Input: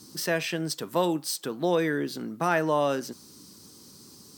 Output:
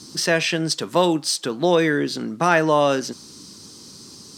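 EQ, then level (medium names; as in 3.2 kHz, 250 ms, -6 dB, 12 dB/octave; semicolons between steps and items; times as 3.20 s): distance through air 83 m; treble shelf 3.5 kHz +10.5 dB; +7.0 dB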